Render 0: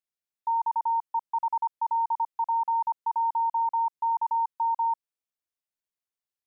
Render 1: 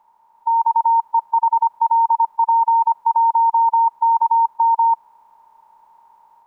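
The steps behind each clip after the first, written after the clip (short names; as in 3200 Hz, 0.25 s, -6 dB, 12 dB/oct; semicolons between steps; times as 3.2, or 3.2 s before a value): per-bin compression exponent 0.4; AGC gain up to 5 dB; gain +5.5 dB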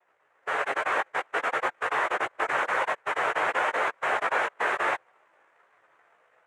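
noise vocoder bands 3; chorus voices 4, 0.53 Hz, delay 16 ms, depth 4.9 ms; gain -8.5 dB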